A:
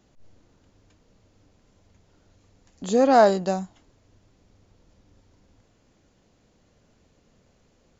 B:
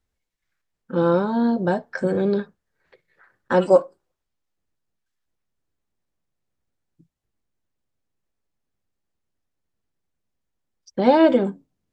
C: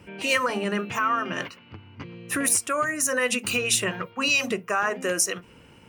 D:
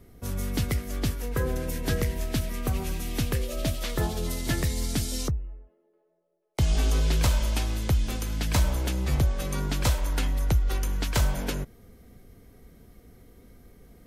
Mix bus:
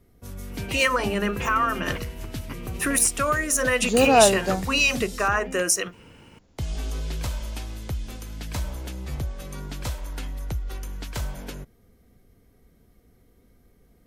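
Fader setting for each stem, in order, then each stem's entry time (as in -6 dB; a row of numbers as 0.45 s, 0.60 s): -0.5 dB, mute, +1.5 dB, -6.5 dB; 1.00 s, mute, 0.50 s, 0.00 s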